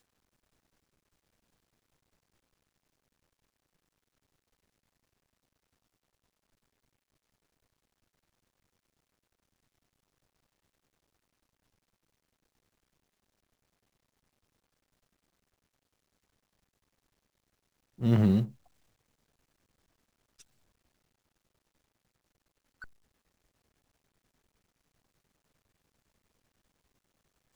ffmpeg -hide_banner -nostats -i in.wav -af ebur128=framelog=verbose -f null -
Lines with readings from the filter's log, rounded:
Integrated loudness:
  I:         -27.1 LUFS
  Threshold: -40.7 LUFS
Loudness range:
  LRA:         5.7 LU
  Threshold: -57.0 LUFS
  LRA low:   -38.5 LUFS
  LRA high:  -32.9 LUFS